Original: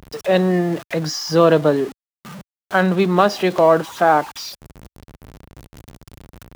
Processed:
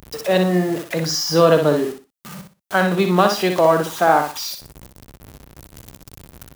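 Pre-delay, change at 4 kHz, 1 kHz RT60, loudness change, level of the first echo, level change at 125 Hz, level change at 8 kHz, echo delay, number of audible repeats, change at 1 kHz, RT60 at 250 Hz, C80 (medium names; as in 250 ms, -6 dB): no reverb, +3.0 dB, no reverb, -0.5 dB, -6.0 dB, -0.5 dB, +5.0 dB, 61 ms, 3, 0.0 dB, no reverb, no reverb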